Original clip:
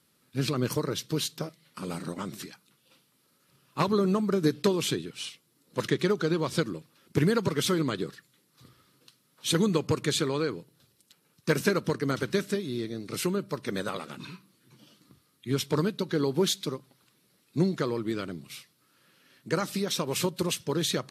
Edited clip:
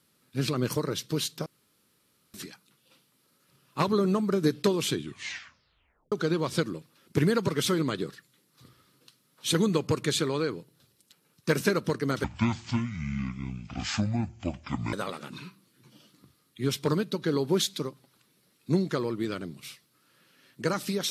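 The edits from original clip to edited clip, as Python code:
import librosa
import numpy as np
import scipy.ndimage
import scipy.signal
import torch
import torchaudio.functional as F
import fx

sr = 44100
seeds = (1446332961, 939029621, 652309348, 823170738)

y = fx.edit(x, sr, fx.room_tone_fill(start_s=1.46, length_s=0.88),
    fx.tape_stop(start_s=4.92, length_s=1.2),
    fx.speed_span(start_s=12.24, length_s=1.56, speed=0.58), tone=tone)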